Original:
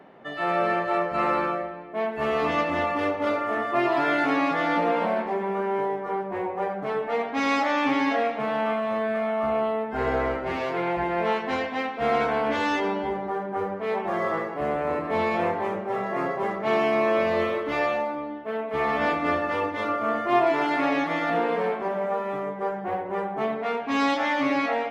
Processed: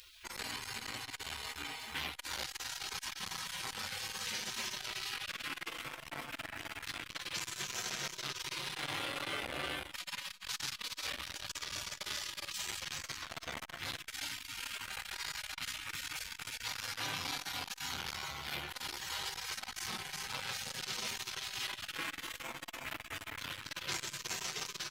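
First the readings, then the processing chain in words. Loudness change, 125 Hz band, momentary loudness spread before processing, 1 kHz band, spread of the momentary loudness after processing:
-14.0 dB, -13.0 dB, 7 LU, -21.0 dB, 5 LU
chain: peak limiter -21 dBFS, peak gain reduction 9.5 dB; bass shelf 450 Hz -3.5 dB; gain riding 0.5 s; tone controls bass +4 dB, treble +13 dB; feedback delay 367 ms, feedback 28%, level -5 dB; spectral gate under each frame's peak -25 dB weak; transformer saturation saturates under 1.9 kHz; trim +10 dB

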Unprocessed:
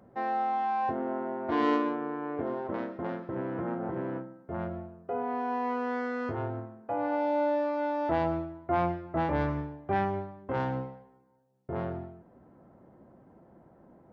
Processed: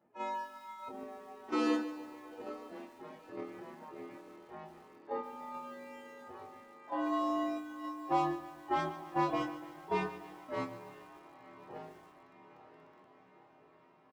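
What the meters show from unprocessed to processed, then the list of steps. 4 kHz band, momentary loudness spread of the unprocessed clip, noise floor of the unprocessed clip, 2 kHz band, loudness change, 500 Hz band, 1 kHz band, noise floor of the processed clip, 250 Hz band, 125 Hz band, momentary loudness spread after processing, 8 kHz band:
+0.5 dB, 9 LU, -59 dBFS, -7.0 dB, -6.0 dB, -9.5 dB, -6.5 dB, -63 dBFS, -6.0 dB, -14.0 dB, 20 LU, no reading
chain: frequency axis rescaled in octaves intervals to 116%; reverb removal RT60 1.3 s; high-pass 240 Hz 12 dB/octave; echo that smears into a reverb 956 ms, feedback 62%, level -12 dB; dynamic bell 1.8 kHz, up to -5 dB, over -45 dBFS, Q 0.76; gate -35 dBFS, range -9 dB; doubling 26 ms -7.5 dB; bit-crushed delay 146 ms, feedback 55%, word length 9-bit, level -13.5 dB

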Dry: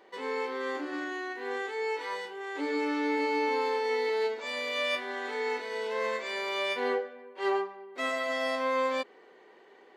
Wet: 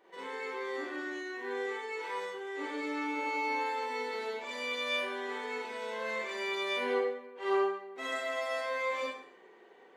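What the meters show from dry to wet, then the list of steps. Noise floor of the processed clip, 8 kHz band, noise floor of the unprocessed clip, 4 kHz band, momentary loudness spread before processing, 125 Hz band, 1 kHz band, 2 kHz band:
-58 dBFS, -1.5 dB, -57 dBFS, -3.0 dB, 7 LU, no reading, -3.0 dB, -2.5 dB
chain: peaking EQ 4.6 kHz -6 dB 0.3 oct; Schroeder reverb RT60 0.58 s, combs from 33 ms, DRR -5.5 dB; trim -8 dB

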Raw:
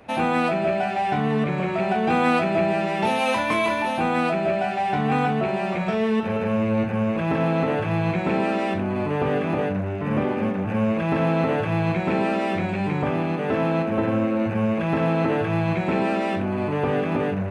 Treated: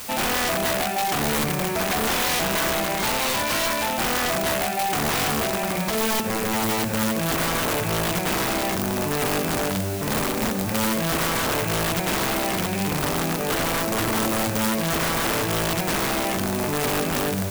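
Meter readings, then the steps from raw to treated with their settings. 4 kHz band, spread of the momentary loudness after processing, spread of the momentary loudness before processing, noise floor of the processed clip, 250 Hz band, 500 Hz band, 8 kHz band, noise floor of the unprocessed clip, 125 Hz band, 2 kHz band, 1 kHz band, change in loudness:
+11.0 dB, 2 LU, 3 LU, -26 dBFS, -3.5 dB, -3.0 dB, no reading, -27 dBFS, -3.5 dB, +2.5 dB, -1.0 dB, +0.5 dB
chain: word length cut 6-bit, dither triangular; integer overflow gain 18 dB

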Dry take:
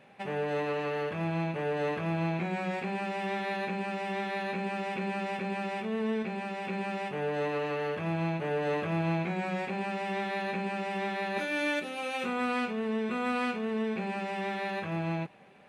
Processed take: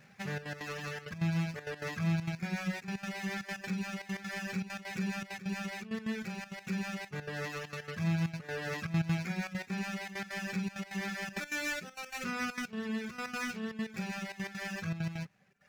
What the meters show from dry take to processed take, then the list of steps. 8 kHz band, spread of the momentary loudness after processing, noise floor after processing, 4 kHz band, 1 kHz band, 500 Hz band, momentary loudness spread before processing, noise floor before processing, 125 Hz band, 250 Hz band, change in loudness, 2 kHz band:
+7.5 dB, 7 LU, -56 dBFS, -1.5 dB, -10.5 dB, -12.0 dB, 3 LU, -38 dBFS, 0.0 dB, -3.0 dB, -4.5 dB, -3.0 dB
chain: median filter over 15 samples; reverb removal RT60 1.2 s; trance gate "xxxxx.x." 198 bpm -12 dB; high-order bell 520 Hz -13 dB 2.4 oct; trim +5.5 dB

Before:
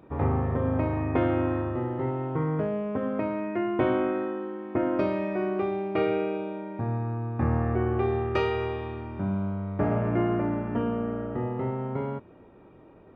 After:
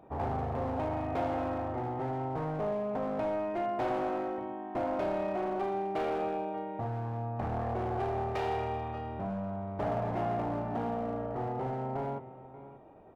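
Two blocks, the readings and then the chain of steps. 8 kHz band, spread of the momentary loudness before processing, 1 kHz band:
no reading, 6 LU, +0.5 dB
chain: bass shelf 330 Hz +2.5 dB; hum notches 50/100/150/200/250/300/350 Hz; delay 586 ms -16 dB; hard clipper -26.5 dBFS, distortion -8 dB; peaking EQ 740 Hz +13 dB 0.66 oct; trim -7 dB

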